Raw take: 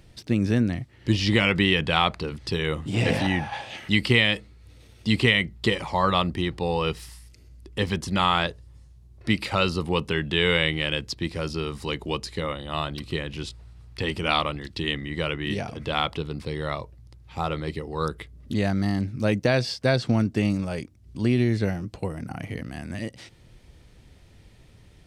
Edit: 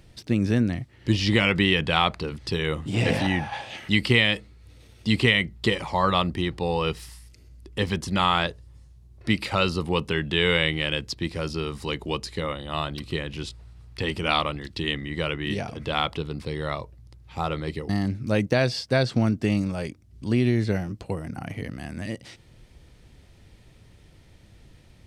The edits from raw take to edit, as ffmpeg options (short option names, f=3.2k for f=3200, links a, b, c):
-filter_complex "[0:a]asplit=2[a][b];[a]atrim=end=17.892[c];[b]atrim=start=18.818[d];[c][d]acrossfade=d=0.004:c1=hsin:c2=hsin"